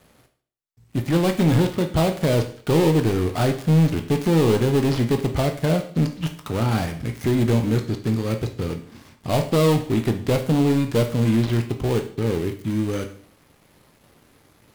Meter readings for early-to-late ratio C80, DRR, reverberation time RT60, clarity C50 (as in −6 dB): 14.5 dB, 5.0 dB, 0.50 s, 11.0 dB